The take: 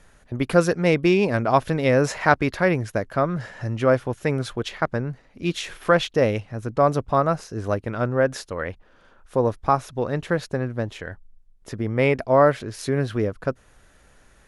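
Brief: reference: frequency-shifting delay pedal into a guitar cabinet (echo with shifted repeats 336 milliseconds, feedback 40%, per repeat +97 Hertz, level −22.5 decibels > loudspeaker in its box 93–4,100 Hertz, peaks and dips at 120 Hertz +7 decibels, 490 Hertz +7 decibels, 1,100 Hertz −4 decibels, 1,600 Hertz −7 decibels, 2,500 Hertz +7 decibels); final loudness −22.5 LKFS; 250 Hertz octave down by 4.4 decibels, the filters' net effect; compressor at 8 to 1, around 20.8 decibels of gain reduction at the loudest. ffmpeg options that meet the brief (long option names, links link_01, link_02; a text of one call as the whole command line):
ffmpeg -i in.wav -filter_complex "[0:a]equalizer=frequency=250:width_type=o:gain=-8,acompressor=threshold=-35dB:ratio=8,asplit=4[link_01][link_02][link_03][link_04];[link_02]adelay=336,afreqshift=97,volume=-22.5dB[link_05];[link_03]adelay=672,afreqshift=194,volume=-30.5dB[link_06];[link_04]adelay=1008,afreqshift=291,volume=-38.4dB[link_07];[link_01][link_05][link_06][link_07]amix=inputs=4:normalize=0,highpass=93,equalizer=frequency=120:width_type=q:width=4:gain=7,equalizer=frequency=490:width_type=q:width=4:gain=7,equalizer=frequency=1100:width_type=q:width=4:gain=-4,equalizer=frequency=1600:width_type=q:width=4:gain=-7,equalizer=frequency=2500:width_type=q:width=4:gain=7,lowpass=frequency=4100:width=0.5412,lowpass=frequency=4100:width=1.3066,volume=14.5dB" out.wav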